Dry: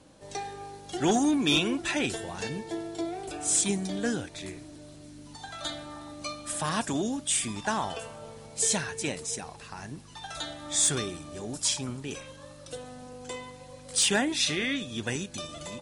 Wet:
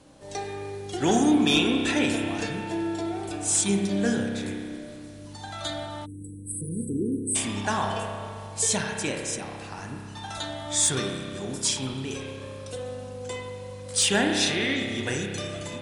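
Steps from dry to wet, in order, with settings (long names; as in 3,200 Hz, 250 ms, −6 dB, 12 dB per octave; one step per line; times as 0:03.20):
spring reverb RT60 2.2 s, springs 30 ms, chirp 60 ms, DRR 2 dB
time-frequency box erased 0:06.06–0:07.36, 510–7,800 Hz
level +1.5 dB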